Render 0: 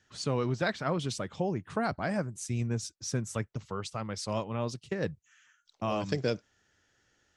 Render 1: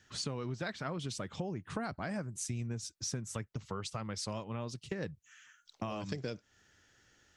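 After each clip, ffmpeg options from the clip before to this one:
-af "equalizer=f=620:t=o:w=1.7:g=-3,acompressor=threshold=-40dB:ratio=6,volume=4.5dB"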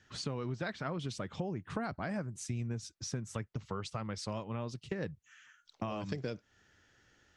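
-af "highshelf=f=6.2k:g=-11,volume=1dB"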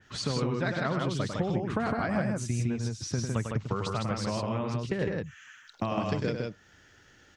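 -af "aecho=1:1:99.13|157.4:0.501|0.708,adynamicequalizer=threshold=0.00141:dfrequency=3400:dqfactor=0.7:tfrequency=3400:tqfactor=0.7:attack=5:release=100:ratio=0.375:range=2:mode=cutabove:tftype=highshelf,volume=6.5dB"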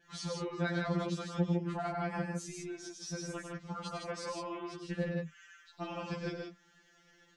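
-af "afftfilt=real='re*2.83*eq(mod(b,8),0)':imag='im*2.83*eq(mod(b,8),0)':win_size=2048:overlap=0.75,volume=-3.5dB"

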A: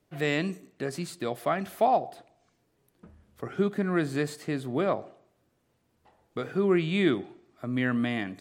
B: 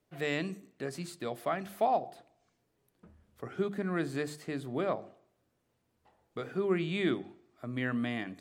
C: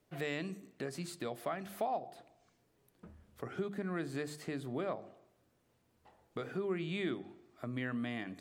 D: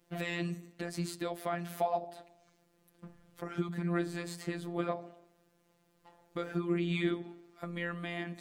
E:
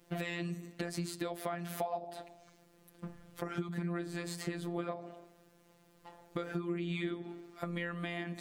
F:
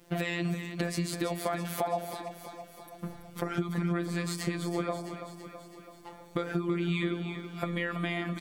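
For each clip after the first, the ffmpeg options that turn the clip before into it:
-af "bandreject=f=50:t=h:w=6,bandreject=f=100:t=h:w=6,bandreject=f=150:t=h:w=6,bandreject=f=200:t=h:w=6,bandreject=f=250:t=h:w=6,bandreject=f=300:t=h:w=6,bandreject=f=350:t=h:w=6,volume=-5dB"
-af "acompressor=threshold=-44dB:ratio=2,volume=3dB"
-af "afftfilt=real='hypot(re,im)*cos(PI*b)':imag='0':win_size=1024:overlap=0.75,volume=7dB"
-af "acompressor=threshold=-40dB:ratio=5,volume=6dB"
-af "aecho=1:1:330|660|990|1320|1650|1980|2310:0.355|0.209|0.124|0.0729|0.043|0.0254|0.015,volume=6dB"

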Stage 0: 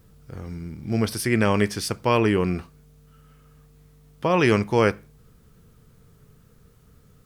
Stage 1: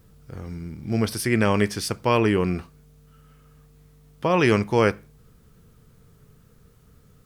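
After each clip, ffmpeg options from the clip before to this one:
-af anull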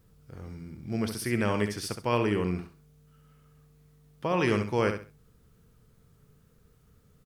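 -af "aecho=1:1:67|134|201:0.398|0.0955|0.0229,volume=-7.5dB"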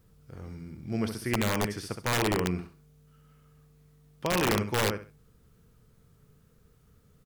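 -filter_complex "[0:a]acrossover=split=2300[a][b];[a]aeval=exprs='(mod(8.91*val(0)+1,2)-1)/8.91':c=same[c];[b]alimiter=level_in=9.5dB:limit=-24dB:level=0:latency=1:release=194,volume=-9.5dB[d];[c][d]amix=inputs=2:normalize=0"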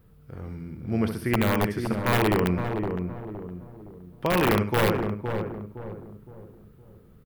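-filter_complex "[0:a]equalizer=f=6.5k:t=o:w=1.4:g=-12.5,asplit=2[a][b];[b]adelay=515,lowpass=f=910:p=1,volume=-5dB,asplit=2[c][d];[d]adelay=515,lowpass=f=910:p=1,volume=0.42,asplit=2[e][f];[f]adelay=515,lowpass=f=910:p=1,volume=0.42,asplit=2[g][h];[h]adelay=515,lowpass=f=910:p=1,volume=0.42,asplit=2[i][j];[j]adelay=515,lowpass=f=910:p=1,volume=0.42[k];[c][e][g][i][k]amix=inputs=5:normalize=0[l];[a][l]amix=inputs=2:normalize=0,volume=5dB"

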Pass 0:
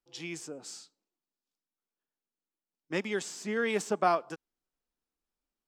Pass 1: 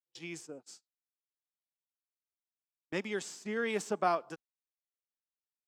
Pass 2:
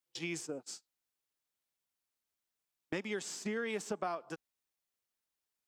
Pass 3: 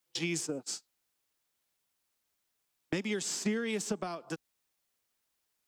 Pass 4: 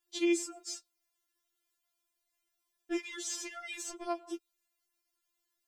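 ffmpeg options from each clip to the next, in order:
-af "agate=range=-36dB:threshold=-43dB:ratio=16:detection=peak,volume=-3.5dB"
-af "acompressor=threshold=-41dB:ratio=6,volume=6.5dB"
-filter_complex "[0:a]acrossover=split=320|3000[a][b][c];[b]acompressor=threshold=-47dB:ratio=4[d];[a][d][c]amix=inputs=3:normalize=0,volume=8dB"
-af "afftfilt=real='re*4*eq(mod(b,16),0)':imag='im*4*eq(mod(b,16),0)':win_size=2048:overlap=0.75"

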